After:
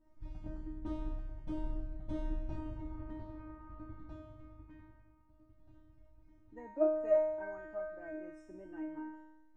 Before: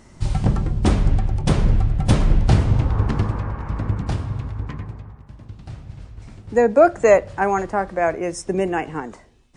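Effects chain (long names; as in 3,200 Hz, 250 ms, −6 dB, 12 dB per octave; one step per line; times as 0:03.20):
low-pass filter 1,000 Hz 6 dB per octave
spectral tilt −1.5 dB per octave
tuned comb filter 310 Hz, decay 0.94 s, mix 100%
level +1 dB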